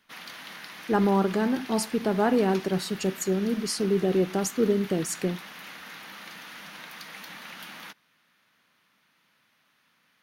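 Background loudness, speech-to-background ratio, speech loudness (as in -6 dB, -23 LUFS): -41.5 LUFS, 15.5 dB, -26.0 LUFS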